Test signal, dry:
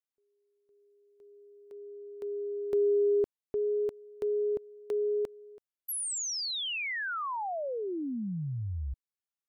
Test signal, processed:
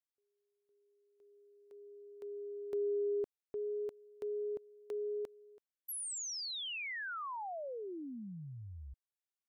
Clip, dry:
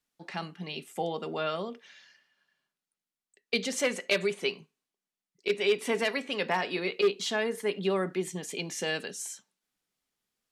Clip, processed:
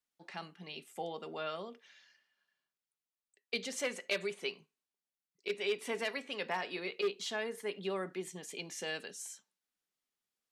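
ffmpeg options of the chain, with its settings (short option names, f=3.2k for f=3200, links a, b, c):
-af "lowshelf=f=240:g=-7,volume=-7dB"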